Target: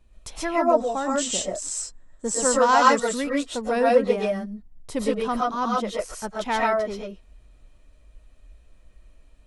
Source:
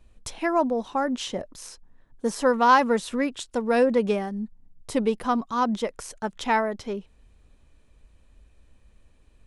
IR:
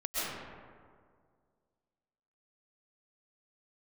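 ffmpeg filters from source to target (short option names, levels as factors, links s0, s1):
-filter_complex "[0:a]asettb=1/sr,asplit=3[s0][s1][s2];[s0]atrim=end=0.674[s3];[s1]atrim=start=0.67:end=3,asetpts=PTS-STARTPTS,afade=t=in:d=0.004:c=qsin,afade=t=out:st=2.326:d=0.004:c=qsin,lowpass=f=7700:t=q:w=13[s4];[s2]atrim=start=2.996[s5];[s3][s4]acrossfade=d=0.004:c1=hsin:c2=qsin[s6];[s6][s5]acrossfade=d=0.004:c1=qsin:c2=hsin[s7];[1:a]atrim=start_sample=2205,atrim=end_sample=6615[s8];[s7][s8]afir=irnorm=-1:irlink=0"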